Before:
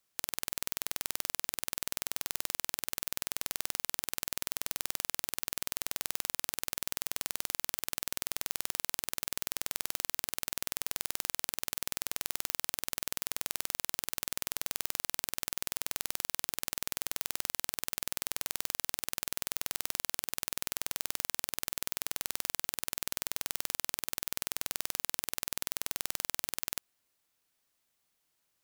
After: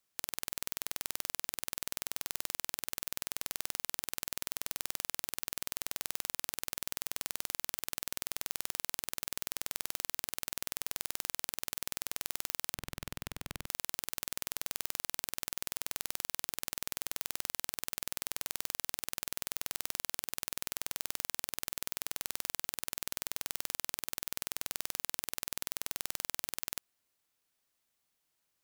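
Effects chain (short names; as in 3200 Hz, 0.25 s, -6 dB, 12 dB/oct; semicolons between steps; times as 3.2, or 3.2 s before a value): 12.74–13.66 tone controls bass +14 dB, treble -9 dB; gain -2.5 dB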